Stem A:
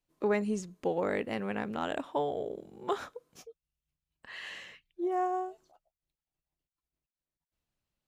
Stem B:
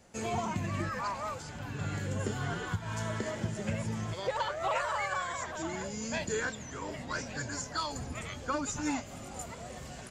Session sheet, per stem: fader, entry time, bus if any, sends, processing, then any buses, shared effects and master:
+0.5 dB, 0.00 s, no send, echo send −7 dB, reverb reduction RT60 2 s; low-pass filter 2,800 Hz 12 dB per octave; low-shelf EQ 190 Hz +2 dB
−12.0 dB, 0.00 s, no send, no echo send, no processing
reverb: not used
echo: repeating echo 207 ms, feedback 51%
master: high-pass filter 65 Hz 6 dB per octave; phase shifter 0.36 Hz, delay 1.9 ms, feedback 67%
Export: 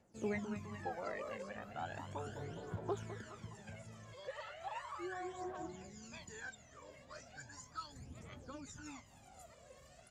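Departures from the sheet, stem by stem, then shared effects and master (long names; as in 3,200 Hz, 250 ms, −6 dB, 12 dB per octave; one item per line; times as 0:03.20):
stem A +0.5 dB → −11.5 dB
stem B −12.0 dB → −18.0 dB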